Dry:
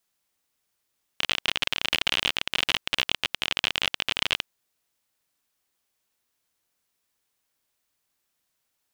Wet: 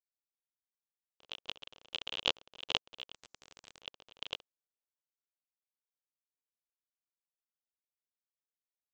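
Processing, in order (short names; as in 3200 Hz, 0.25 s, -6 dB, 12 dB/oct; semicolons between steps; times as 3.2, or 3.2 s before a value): gate -22 dBFS, range -44 dB; graphic EQ 500/1000/2000 Hz +9/+4/-11 dB; transient shaper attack -1 dB, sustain +5 dB; downsampling 16000 Hz; 3.14–3.79 spectral compressor 4:1; gain +11 dB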